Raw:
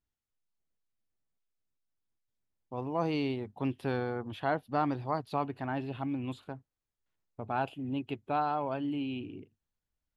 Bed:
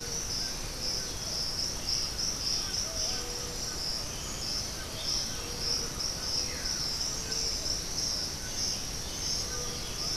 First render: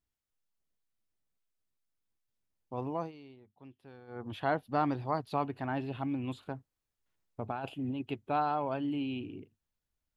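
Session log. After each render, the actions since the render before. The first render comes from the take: 2.89–4.3 dip -20.5 dB, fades 0.23 s; 6.46–8.03 negative-ratio compressor -35 dBFS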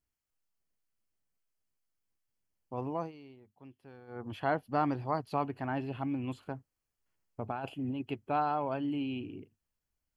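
notch 3700 Hz, Q 5.2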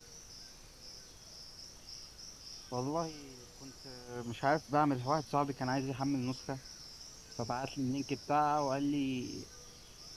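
add bed -18.5 dB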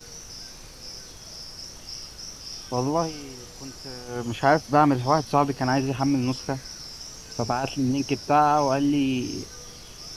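gain +11.5 dB

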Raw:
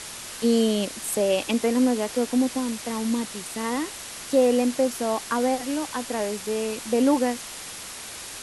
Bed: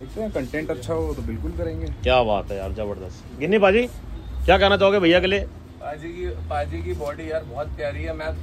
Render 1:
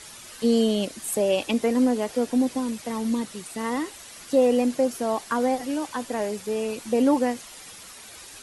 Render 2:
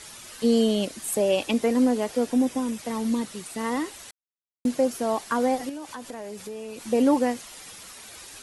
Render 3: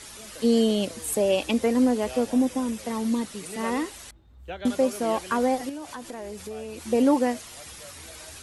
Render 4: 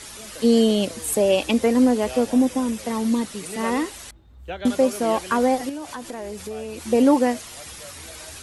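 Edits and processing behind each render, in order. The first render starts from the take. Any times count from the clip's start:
denoiser 9 dB, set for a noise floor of -38 dBFS
2.34–2.79 notch 4300 Hz, Q 6; 4.11–4.65 mute; 5.69–6.82 compressor 4:1, threshold -34 dBFS
add bed -21.5 dB
gain +4 dB

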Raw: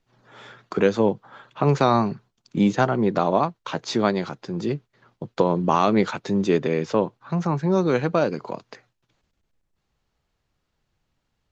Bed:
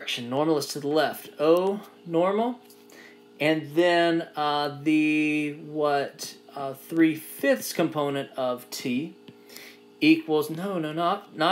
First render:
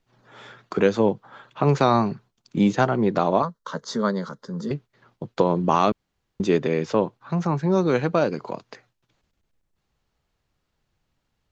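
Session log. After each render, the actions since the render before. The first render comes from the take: 3.42–4.71 fixed phaser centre 500 Hz, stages 8; 5.92–6.4 room tone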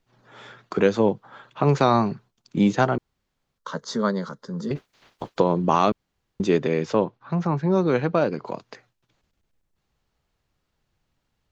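2.98–3.58 room tone; 4.75–5.36 spectral limiter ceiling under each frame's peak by 25 dB; 7.04–8.46 air absorption 100 m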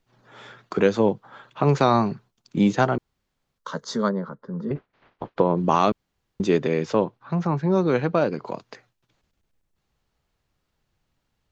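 4.08–5.56 LPF 1300 Hz -> 2500 Hz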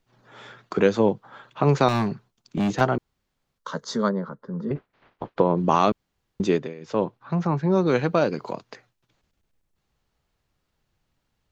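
1.88–2.81 hard clip -19.5 dBFS; 6.48–7.06 dip -17.5 dB, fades 0.26 s; 7.86–8.52 high shelf 4600 Hz +10 dB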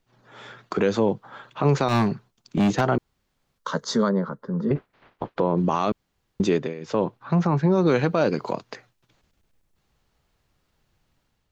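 AGC gain up to 5 dB; limiter -10.5 dBFS, peak gain reduction 8 dB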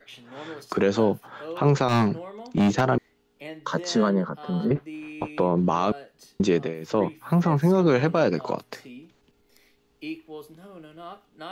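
add bed -16 dB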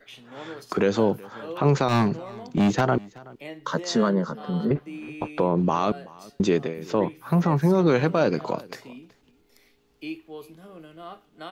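echo 0.376 s -22.5 dB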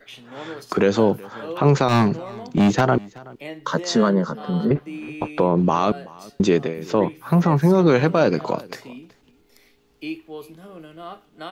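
gain +4 dB

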